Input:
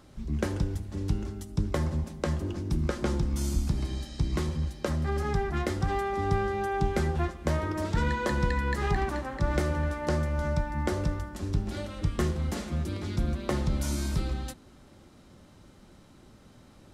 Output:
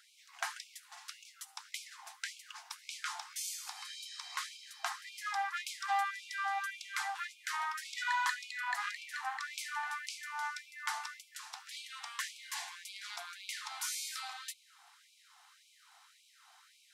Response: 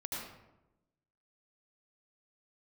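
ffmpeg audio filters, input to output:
-filter_complex "[0:a]asettb=1/sr,asplit=3[s0][s1][s2];[s0]atrim=end=8.344[s3];[s1]atrim=start=8.34:end=9.14,asetpts=PTS-STARTPTS,afade=t=in:d=0.004:c=qsin,afade=t=out:st=0.796:d=0.004:c=qsin,tremolo=f=230:d=0.571[s4];[s2]atrim=start=9.136[s5];[s3][s4]acrossfade=d=0.004:c1=hsin:c2=qsin[s6];[s6][s5]acrossfade=d=0.004:c1=qsin:c2=hsin,asettb=1/sr,asplit=3[s7][s8][s9];[s7]atrim=end=12.194[s10];[s8]atrim=start=12.19:end=12.9,asetpts=PTS-STARTPTS,afade=t=in:d=0.004:c=qsin,afade=t=out:st=0.706:d=0.004:c=qsin,asuperstop=centerf=1300:order=4:qfactor=4.1[s11];[s9]atrim=start=12.896[s12];[s10][s11]acrossfade=d=0.004:c1=hsin:c2=qsin[s13];[s13][s12]acrossfade=d=0.004:c1=qsin:c2=hsin,afftfilt=real='re*gte(b*sr/1024,660*pow(2200/660,0.5+0.5*sin(2*PI*1.8*pts/sr)))':imag='im*gte(b*sr/1024,660*pow(2200/660,0.5+0.5*sin(2*PI*1.8*pts/sr)))':win_size=1024:overlap=0.75,volume=1.19"

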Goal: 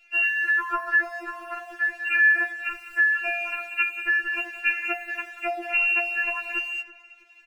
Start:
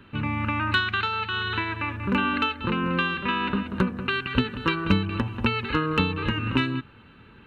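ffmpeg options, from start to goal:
-filter_complex "[0:a]lowshelf=f=130:t=q:w=3:g=-12.5,lowpass=f=2500:t=q:w=0.5098,lowpass=f=2500:t=q:w=0.6013,lowpass=f=2500:t=q:w=0.9,lowpass=f=2500:t=q:w=2.563,afreqshift=-2900,acrossover=split=110|2100[s0][s1][s2];[s1]aeval=exprs='sgn(val(0))*max(abs(val(0))-0.002,0)':c=same[s3];[s0][s3][s2]amix=inputs=3:normalize=0,asplit=2[s4][s5];[s5]adelay=325,lowpass=f=1300:p=1,volume=0.178,asplit=2[s6][s7];[s7]adelay=325,lowpass=f=1300:p=1,volume=0.36,asplit=2[s8][s9];[s9]adelay=325,lowpass=f=1300:p=1,volume=0.36[s10];[s4][s6][s8][s10]amix=inputs=4:normalize=0,afftfilt=real='re*4*eq(mod(b,16),0)':imag='im*4*eq(mod(b,16),0)':win_size=2048:overlap=0.75,volume=1.5"

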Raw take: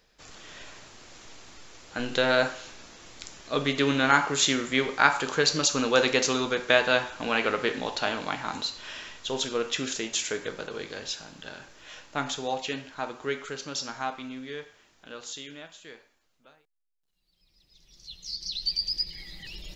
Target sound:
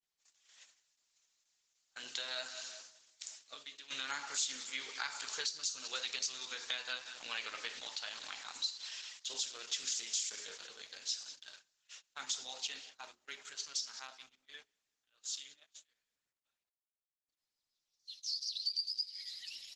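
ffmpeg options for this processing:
-filter_complex "[0:a]flanger=delay=3.1:depth=2.1:regen=74:speed=0.26:shape=triangular,adynamicequalizer=threshold=0.00355:dfrequency=4800:dqfactor=1.6:tfrequency=4800:tqfactor=1.6:attack=5:release=100:ratio=0.375:range=3.5:mode=boostabove:tftype=bell,asplit=3[s0][s1][s2];[s0]afade=t=out:st=6.05:d=0.02[s3];[s1]highpass=f=100:w=0.5412,highpass=f=100:w=1.3066,afade=t=in:st=6.05:d=0.02,afade=t=out:st=7.15:d=0.02[s4];[s2]afade=t=in:st=7.15:d=0.02[s5];[s3][s4][s5]amix=inputs=3:normalize=0,aphaser=in_gain=1:out_gain=1:delay=4.9:decay=0.29:speed=0.97:type=triangular,aderivative,asplit=3[s6][s7][s8];[s6]afade=t=out:st=9.96:d=0.02[s9];[s7]asplit=2[s10][s11];[s11]adelay=26,volume=0.562[s12];[s10][s12]amix=inputs=2:normalize=0,afade=t=in:st=9.96:d=0.02,afade=t=out:st=10.66:d=0.02[s13];[s8]afade=t=in:st=10.66:d=0.02[s14];[s9][s13][s14]amix=inputs=3:normalize=0,asplit=2[s15][s16];[s16]adelay=187,lowpass=f=3200:p=1,volume=0.2,asplit=2[s17][s18];[s18]adelay=187,lowpass=f=3200:p=1,volume=0.55,asplit=2[s19][s20];[s20]adelay=187,lowpass=f=3200:p=1,volume=0.55,asplit=2[s21][s22];[s22]adelay=187,lowpass=f=3200:p=1,volume=0.55,asplit=2[s23][s24];[s24]adelay=187,lowpass=f=3200:p=1,volume=0.55,asplit=2[s25][s26];[s26]adelay=187,lowpass=f=3200:p=1,volume=0.55[s27];[s15][s17][s19][s21][s23][s25][s27]amix=inputs=7:normalize=0,asplit=3[s28][s29][s30];[s28]afade=t=out:st=3.48:d=0.02[s31];[s29]acompressor=threshold=0.00316:ratio=8,afade=t=in:st=3.48:d=0.02,afade=t=out:st=3.9:d=0.02[s32];[s30]afade=t=in:st=3.9:d=0.02[s33];[s31][s32][s33]amix=inputs=3:normalize=0,agate=range=0.0708:threshold=0.00178:ratio=16:detection=peak,bandreject=f=60:t=h:w=6,bandreject=f=120:t=h:w=6,bandreject=f=180:t=h:w=6,bandreject=f=240:t=h:w=6,bandreject=f=300:t=h:w=6,bandreject=f=360:t=h:w=6,bandreject=f=420:t=h:w=6,acrossover=split=160[s34][s35];[s35]acompressor=threshold=0.0112:ratio=4[s36];[s34][s36]amix=inputs=2:normalize=0,volume=1.68" -ar 48000 -c:a libopus -b:a 12k

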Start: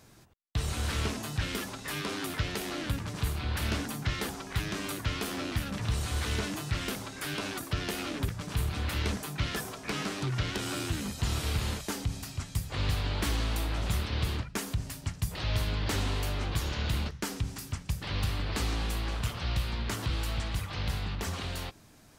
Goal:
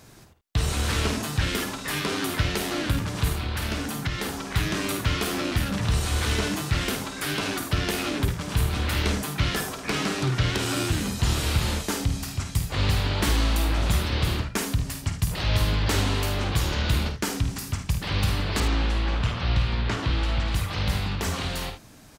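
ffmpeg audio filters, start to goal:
-filter_complex "[0:a]asettb=1/sr,asplit=3[s0][s1][s2];[s0]atrim=end=18.604[s3];[s1]atrim=start=18.6:end=20.48,asetpts=PTS-STARTPTS,afade=t=in:d=0.004:c=qsin,afade=t=out:st=1.876:d=0.004:c=qsin,lowpass=4200[s4];[s2]atrim=start=20.476[s5];[s3][s4]acrossfade=d=0.004:c1=hsin:c2=qsin[s6];[s6][s5]acrossfade=d=0.004:c1=qsin:c2=hsin,aecho=1:1:51|76:0.376|0.251,asettb=1/sr,asplit=3[s7][s8][s9];[s7]atrim=end=3.344[s10];[s8]atrim=start=3.34:end=4.44,asetpts=PTS-STARTPTS,afade=t=in:d=0.004:c=qsin,afade=t=out:st=1.096:d=0.004:c=qsin,acompressor=threshold=0.0224:ratio=2.5[s11];[s9]atrim=start=4.436[s12];[s10][s11]acrossfade=d=0.004:c1=hsin:c2=qsin[s13];[s13][s12]acrossfade=d=0.004:c1=qsin:c2=hsin,volume=2.11"

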